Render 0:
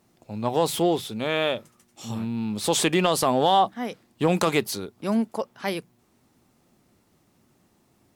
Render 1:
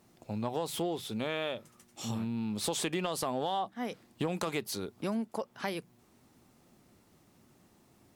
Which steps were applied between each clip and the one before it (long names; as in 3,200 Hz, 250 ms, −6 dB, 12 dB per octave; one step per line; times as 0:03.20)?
downward compressor 4 to 1, threshold −32 dBFS, peak gain reduction 14.5 dB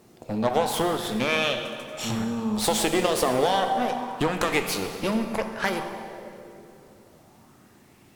harmonic generator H 8 −18 dB, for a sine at −18 dBFS
dense smooth reverb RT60 2.9 s, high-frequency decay 0.65×, DRR 5 dB
auto-filter bell 0.3 Hz 420–2,900 Hz +7 dB
level +7 dB